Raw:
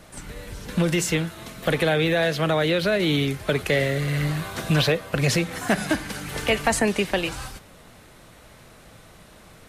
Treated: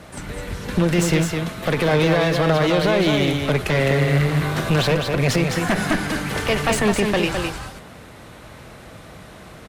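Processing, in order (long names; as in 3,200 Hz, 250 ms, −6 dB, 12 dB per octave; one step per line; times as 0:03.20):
high-pass filter 41 Hz
asymmetric clip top −28.5 dBFS
brickwall limiter −15.5 dBFS, peak gain reduction 4.5 dB
high-shelf EQ 4,200 Hz −7.5 dB
on a send: single-tap delay 209 ms −5 dB
on the sum: level +7.5 dB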